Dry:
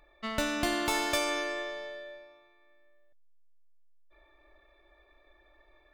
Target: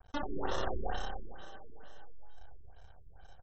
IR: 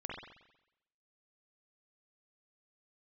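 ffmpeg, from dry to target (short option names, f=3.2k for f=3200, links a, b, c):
-filter_complex "[0:a]asetrate=76440,aresample=44100,equalizer=f=250:t=o:w=0.67:g=5,equalizer=f=630:t=o:w=0.67:g=-10,equalizer=f=1.6k:t=o:w=0.67:g=-10,asplit=4[a][b][c][d];[b]adelay=442,afreqshift=34,volume=-22.5dB[e];[c]adelay=884,afreqshift=68,volume=-28.9dB[f];[d]adelay=1326,afreqshift=102,volume=-35.3dB[g];[a][e][f][g]amix=inputs=4:normalize=0,asetrate=33038,aresample=44100,atempo=1.33484,asplit=2[h][i];[i]acompressor=threshold=-40dB:ratio=6,volume=1dB[j];[h][j]amix=inputs=2:normalize=0,aeval=exprs='max(val(0),0)':c=same,alimiter=level_in=1dB:limit=-24dB:level=0:latency=1:release=119,volume=-1dB,acrusher=samples=19:mix=1:aa=0.000001,asplit=2[k][l];[1:a]atrim=start_sample=2205,highshelf=f=3.8k:g=10.5,adelay=89[m];[l][m]afir=irnorm=-1:irlink=0,volume=-5dB[n];[k][n]amix=inputs=2:normalize=0,afftfilt=real='re*lt(b*sr/1024,410*pow(8000/410,0.5+0.5*sin(2*PI*2.2*pts/sr)))':imag='im*lt(b*sr/1024,410*pow(8000/410,0.5+0.5*sin(2*PI*2.2*pts/sr)))':win_size=1024:overlap=0.75,volume=3dB"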